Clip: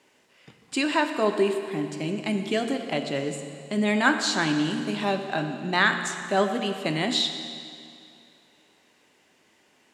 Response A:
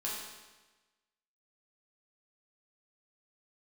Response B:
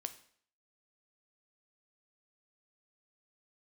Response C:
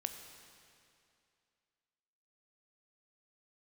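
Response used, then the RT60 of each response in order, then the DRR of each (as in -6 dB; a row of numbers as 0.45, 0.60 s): C; 1.2, 0.55, 2.5 s; -6.5, 9.0, 6.0 dB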